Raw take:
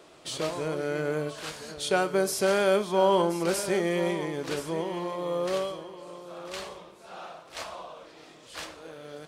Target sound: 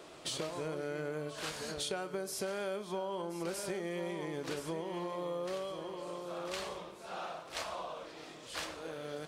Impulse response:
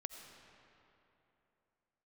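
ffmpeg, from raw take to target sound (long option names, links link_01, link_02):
-af "acompressor=threshold=-36dB:ratio=10,volume=1dB"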